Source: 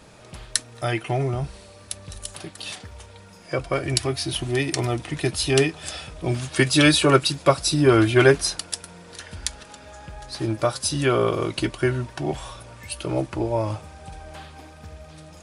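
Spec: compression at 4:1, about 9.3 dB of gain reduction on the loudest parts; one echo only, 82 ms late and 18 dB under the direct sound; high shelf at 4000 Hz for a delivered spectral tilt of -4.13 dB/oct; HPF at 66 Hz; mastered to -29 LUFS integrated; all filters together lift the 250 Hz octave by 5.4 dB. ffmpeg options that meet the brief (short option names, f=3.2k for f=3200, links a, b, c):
-af "highpass=66,equalizer=f=250:t=o:g=7.5,highshelf=f=4k:g=6,acompressor=threshold=-19dB:ratio=4,aecho=1:1:82:0.126,volume=-4dB"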